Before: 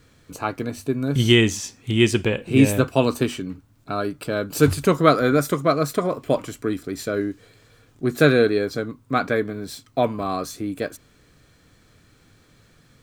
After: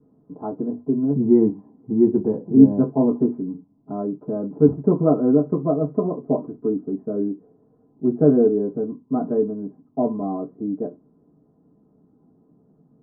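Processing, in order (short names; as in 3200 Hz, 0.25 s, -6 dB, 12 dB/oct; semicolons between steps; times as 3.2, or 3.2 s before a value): steep low-pass 1000 Hz 36 dB/oct; reverb RT60 0.15 s, pre-delay 3 ms, DRR -3.5 dB; gain -18 dB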